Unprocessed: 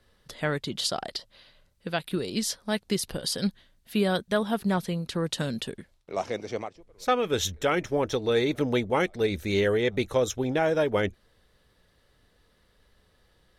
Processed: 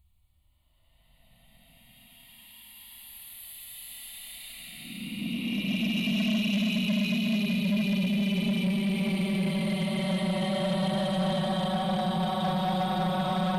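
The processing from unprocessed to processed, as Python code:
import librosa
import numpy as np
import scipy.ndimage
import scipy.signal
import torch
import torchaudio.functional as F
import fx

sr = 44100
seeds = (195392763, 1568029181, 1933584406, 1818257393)

y = fx.paulstretch(x, sr, seeds[0], factor=46.0, window_s=0.05, from_s=3.83)
y = fx.fixed_phaser(y, sr, hz=1600.0, stages=6)
y = 10.0 ** (-26.0 / 20.0) * np.tanh(y / 10.0 ** (-26.0 / 20.0))
y = y * 10.0 ** (3.5 / 20.0)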